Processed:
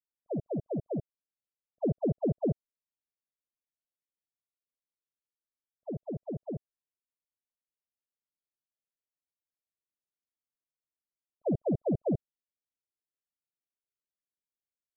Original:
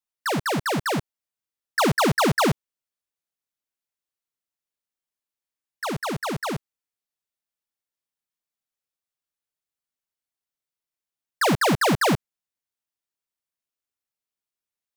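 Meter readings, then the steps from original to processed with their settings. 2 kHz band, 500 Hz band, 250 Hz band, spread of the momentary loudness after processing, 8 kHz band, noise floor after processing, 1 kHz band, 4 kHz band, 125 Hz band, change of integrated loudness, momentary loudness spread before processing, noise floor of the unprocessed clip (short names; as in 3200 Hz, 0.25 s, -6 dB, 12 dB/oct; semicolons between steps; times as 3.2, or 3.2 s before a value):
under -40 dB, -7.5 dB, -7.0 dB, 10 LU, under -40 dB, under -85 dBFS, -24.0 dB, under -40 dB, -7.0 dB, -10.5 dB, 11 LU, under -85 dBFS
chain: steep low-pass 660 Hz 72 dB/oct; gain -7 dB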